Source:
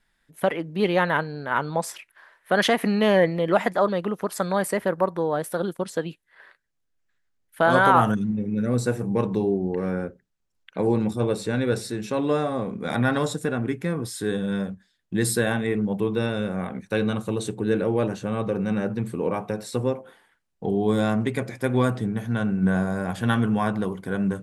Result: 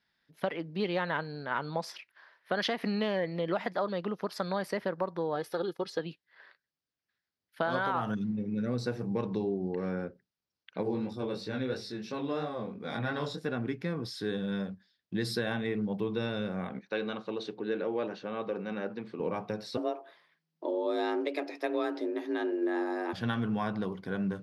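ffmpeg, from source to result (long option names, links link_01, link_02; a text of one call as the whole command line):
ffmpeg -i in.wav -filter_complex "[0:a]asettb=1/sr,asplit=3[link_01][link_02][link_03];[link_01]atrim=end=5.354[link_04];[link_02]atrim=start=5.35:end=5.99,asetpts=PTS-STARTPTS,afade=type=in:duration=0.004:curve=qsin,afade=type=out:start_time=0.636:duration=0.004:curve=qsin,aecho=1:1:2.4:0.55,atrim=end_sample=28224[link_05];[link_03]atrim=start=5.986[link_06];[link_04][link_05]acrossfade=duration=0.004:curve1=hsin:curve2=qsin[link_07];[link_07][link_06]acrossfade=duration=0.004:curve1=qsin:curve2=hsin,asettb=1/sr,asplit=3[link_08][link_09][link_10];[link_08]atrim=end=10.834[link_11];[link_09]atrim=start=10.83:end=13.46,asetpts=PTS-STARTPTS,afade=type=in:duration=0.004:curve=qsin,afade=type=out:start_time=2.626:duration=0.004:curve=qsin,flanger=delay=19:depth=4.3:speed=3[link_12];[link_10]atrim=start=13.456[link_13];[link_11][link_12]acrossfade=duration=0.004:curve1=hsin:curve2=qsin[link_14];[link_14][link_13]acrossfade=duration=0.004:curve1=qsin:curve2=hsin,asettb=1/sr,asplit=3[link_15][link_16][link_17];[link_15]atrim=end=16.794[link_18];[link_16]atrim=start=16.79:end=19.2,asetpts=PTS-STARTPTS,afade=type=in:duration=0.004:curve=qsin,afade=type=out:start_time=2.406:duration=0.004:curve=qsin,highpass=290,lowpass=4200[link_19];[link_17]atrim=start=19.196[link_20];[link_18][link_19]acrossfade=duration=0.004:curve1=hsin:curve2=qsin[link_21];[link_21][link_20]acrossfade=duration=0.004:curve1=qsin:curve2=hsin,asettb=1/sr,asplit=3[link_22][link_23][link_24];[link_22]atrim=end=19.774[link_25];[link_23]atrim=start=19.77:end=23.13,asetpts=PTS-STARTPTS,afade=type=in:duration=0.004:curve=qsin,afade=type=out:start_time=3.356:duration=0.004:curve=qsin,afreqshift=160[link_26];[link_24]atrim=start=23.126[link_27];[link_25][link_26]acrossfade=duration=0.004:curve1=hsin:curve2=qsin[link_28];[link_28][link_27]acrossfade=duration=0.004:curve1=qsin:curve2=hsin,highpass=94,highshelf=frequency=6300:width_type=q:width=3:gain=-8.5,acompressor=threshold=-20dB:ratio=6,volume=-6.5dB" out.wav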